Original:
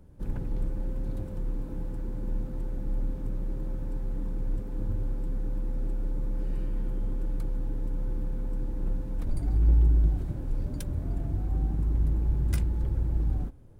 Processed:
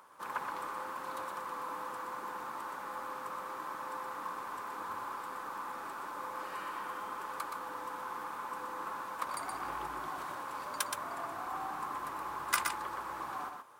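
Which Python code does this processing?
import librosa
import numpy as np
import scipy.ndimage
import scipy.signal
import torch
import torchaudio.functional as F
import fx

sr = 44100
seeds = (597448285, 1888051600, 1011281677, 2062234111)

p1 = fx.highpass_res(x, sr, hz=1100.0, q=6.2)
p2 = p1 + fx.echo_single(p1, sr, ms=122, db=-5.0, dry=0)
y = p2 * librosa.db_to_amplitude(9.0)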